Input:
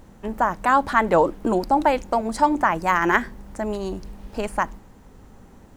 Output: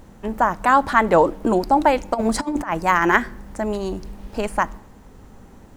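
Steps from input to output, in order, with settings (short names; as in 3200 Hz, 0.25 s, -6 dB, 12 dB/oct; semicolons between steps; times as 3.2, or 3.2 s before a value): 2.14–2.73 negative-ratio compressor -24 dBFS, ratio -0.5; on a send: reverb RT60 0.95 s, pre-delay 8 ms, DRR 24 dB; on the sum: gain +2.5 dB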